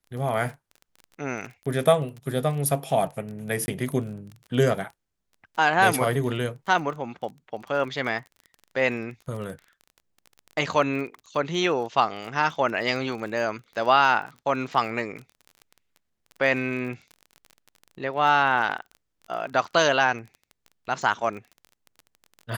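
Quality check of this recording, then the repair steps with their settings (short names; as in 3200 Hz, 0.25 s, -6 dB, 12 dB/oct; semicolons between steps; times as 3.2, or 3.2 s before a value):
crackle 24/s -34 dBFS
3.66–3.68 gap 20 ms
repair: de-click; interpolate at 3.66, 20 ms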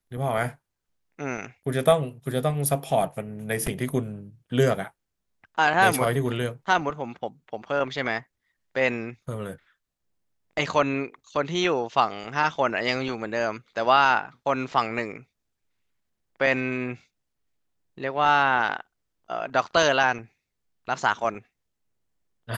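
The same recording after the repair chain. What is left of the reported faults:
none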